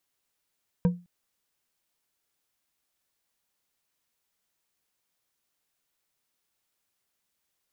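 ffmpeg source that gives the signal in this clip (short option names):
-f lavfi -i "aevalsrc='0.168*pow(10,-3*t/0.29)*sin(2*PI*176*t)+0.0596*pow(10,-3*t/0.143)*sin(2*PI*485.2*t)+0.0211*pow(10,-3*t/0.089)*sin(2*PI*951.1*t)+0.0075*pow(10,-3*t/0.063)*sin(2*PI*1572.2*t)+0.00266*pow(10,-3*t/0.047)*sin(2*PI*2347.8*t)':d=0.21:s=44100"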